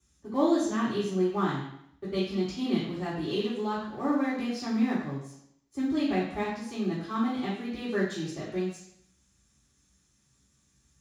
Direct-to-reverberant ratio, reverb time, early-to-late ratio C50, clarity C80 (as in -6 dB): -10.5 dB, 0.75 s, 3.0 dB, 6.0 dB